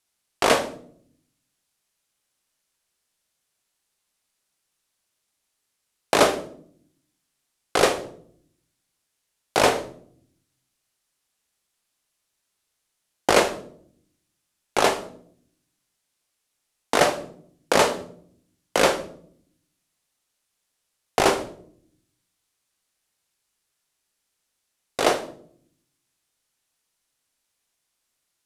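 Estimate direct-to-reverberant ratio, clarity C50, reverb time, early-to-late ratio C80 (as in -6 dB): 7.5 dB, 13.5 dB, 0.60 s, 17.0 dB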